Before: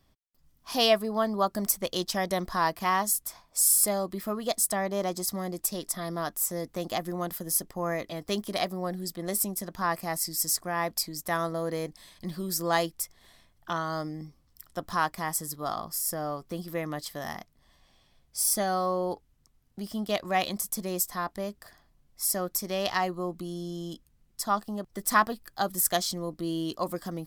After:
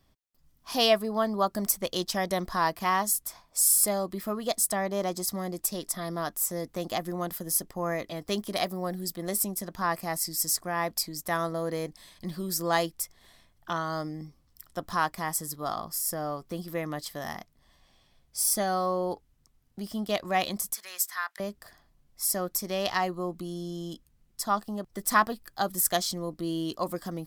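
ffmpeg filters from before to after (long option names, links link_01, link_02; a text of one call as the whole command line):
ffmpeg -i in.wav -filter_complex "[0:a]asettb=1/sr,asplit=3[link_01][link_02][link_03];[link_01]atrim=end=8.564[link_04];[link_02]atrim=start=8.56:end=9.29,asetpts=PTS-STARTPTS,afade=type=in:duration=0.004:curve=qsin,afade=type=out:start_time=0.726:duration=0.004:curve=qsin,highshelf=frequency=11000:gain=7.5[link_05];[link_03]atrim=start=9.286[link_06];[link_04][link_05]acrossfade=duration=0.004:curve1=hsin:curve2=qsin[link_07];[link_07][link_06]acrossfade=duration=0.004:curve1=qsin:curve2=hsin,asettb=1/sr,asplit=3[link_08][link_09][link_10];[link_08]atrim=end=20.744[link_11];[link_09]atrim=start=20.74:end=21.4,asetpts=PTS-STARTPTS,afade=type=in:duration=0.004:curve=qsin,afade=type=out:start_time=0.656:duration=0.004:curve=qsin,highpass=frequency=1600:width_type=q:width=2.2[link_12];[link_10]atrim=start=21.396[link_13];[link_11][link_12]acrossfade=duration=0.004:curve1=hsin:curve2=qsin[link_14];[link_14][link_13]acrossfade=duration=0.004:curve1=qsin:curve2=hsin" out.wav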